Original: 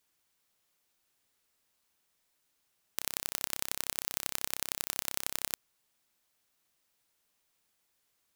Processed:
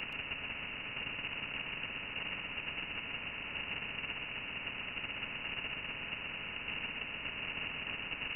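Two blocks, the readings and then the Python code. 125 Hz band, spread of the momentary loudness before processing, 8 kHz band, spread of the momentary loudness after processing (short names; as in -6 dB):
+7.5 dB, 4 LU, under -40 dB, 1 LU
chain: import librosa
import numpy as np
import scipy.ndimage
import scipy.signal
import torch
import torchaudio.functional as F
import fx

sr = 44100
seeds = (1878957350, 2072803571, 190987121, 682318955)

p1 = x + 0.5 * 10.0 ** (-26.5 / 20.0) * np.sign(x)
p2 = fx.tube_stage(p1, sr, drive_db=23.0, bias=0.5)
p3 = fx.tilt_eq(p2, sr, slope=-4.5)
p4 = fx.level_steps(p3, sr, step_db=9)
p5 = fx.notch_comb(p4, sr, f0_hz=410.0)
p6 = fx.freq_invert(p5, sr, carrier_hz=2800)
p7 = fx.band_shelf(p6, sr, hz=930.0, db=-10.5, octaves=2.5)
p8 = p7 + fx.echo_single(p7, sr, ms=126, db=-5.0, dry=0)
p9 = fx.spectral_comp(p8, sr, ratio=2.0)
y = F.gain(torch.from_numpy(p9), 5.5).numpy()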